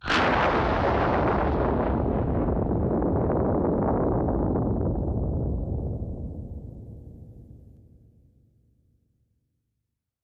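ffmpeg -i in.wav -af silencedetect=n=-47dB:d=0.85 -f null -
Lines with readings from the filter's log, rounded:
silence_start: 8.02
silence_end: 10.24 | silence_duration: 2.22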